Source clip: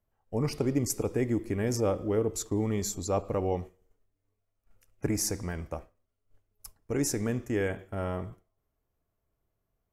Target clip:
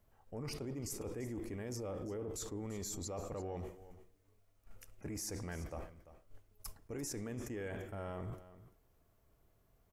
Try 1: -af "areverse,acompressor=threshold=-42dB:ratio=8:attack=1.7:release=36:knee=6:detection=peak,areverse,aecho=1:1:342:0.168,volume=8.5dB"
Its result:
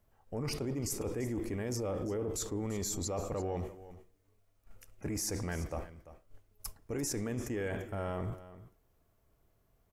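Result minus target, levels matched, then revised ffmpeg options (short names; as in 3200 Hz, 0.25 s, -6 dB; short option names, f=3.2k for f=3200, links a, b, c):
compressor: peak gain reduction -6.5 dB
-af "areverse,acompressor=threshold=-49.5dB:ratio=8:attack=1.7:release=36:knee=6:detection=peak,areverse,aecho=1:1:342:0.168,volume=8.5dB"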